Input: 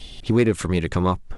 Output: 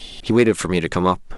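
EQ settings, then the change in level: bell 67 Hz -11 dB 1.4 oct; low shelf 220 Hz -4 dB; +5.5 dB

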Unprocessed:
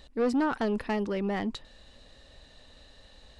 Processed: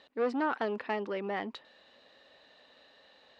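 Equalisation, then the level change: Bessel high-pass 440 Hz, order 2; LPF 3200 Hz 12 dB/oct; 0.0 dB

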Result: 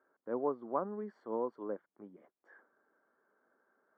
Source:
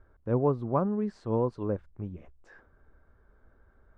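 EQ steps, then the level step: polynomial smoothing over 41 samples; HPF 230 Hz 24 dB/oct; tilt +2 dB/oct; -5.0 dB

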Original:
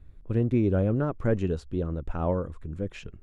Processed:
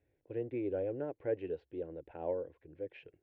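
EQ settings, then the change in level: speaker cabinet 280–2400 Hz, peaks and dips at 390 Hz -4 dB, 650 Hz -6 dB, 970 Hz -4 dB; fixed phaser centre 510 Hz, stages 4; -2.5 dB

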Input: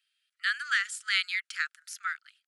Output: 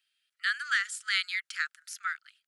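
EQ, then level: dynamic EQ 2600 Hz, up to -4 dB, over -41 dBFS, Q 3.5; 0.0 dB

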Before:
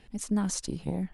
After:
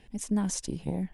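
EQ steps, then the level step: bell 1300 Hz -9 dB 0.26 oct; bell 4300 Hz -6.5 dB 0.2 oct; 0.0 dB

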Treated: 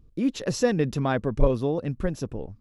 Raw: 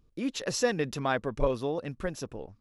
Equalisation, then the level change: low shelf 420 Hz +12 dB; -1.0 dB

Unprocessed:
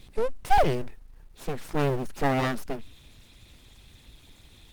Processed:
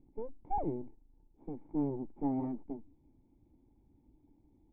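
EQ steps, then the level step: vocal tract filter u; high shelf 3400 Hz +10 dB; 0.0 dB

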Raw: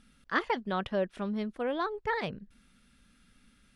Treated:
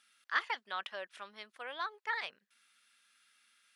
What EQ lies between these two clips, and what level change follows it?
HPF 1300 Hz 12 dB/oct; 0.0 dB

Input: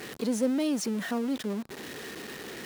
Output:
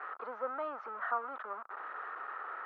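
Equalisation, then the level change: ladder high-pass 600 Hz, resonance 30%; synth low-pass 1300 Hz, resonance Q 8.9; air absorption 270 m; +2.5 dB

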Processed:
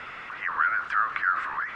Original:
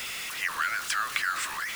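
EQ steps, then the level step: synth low-pass 1400 Hz, resonance Q 2; 0.0 dB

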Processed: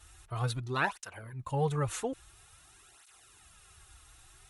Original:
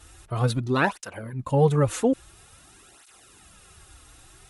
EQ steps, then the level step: bell 240 Hz -11.5 dB 1.1 oct; bell 540 Hz -6.5 dB 0.42 oct; notch 4900 Hz, Q 24; -5.5 dB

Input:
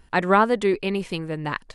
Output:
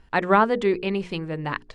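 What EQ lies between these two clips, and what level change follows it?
air absorption 84 m; notches 60/120/180/240/300/360/420/480 Hz; 0.0 dB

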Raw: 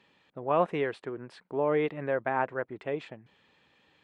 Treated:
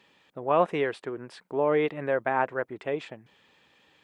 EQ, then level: tone controls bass -3 dB, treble +5 dB; notch 4200 Hz, Q 28; +3.0 dB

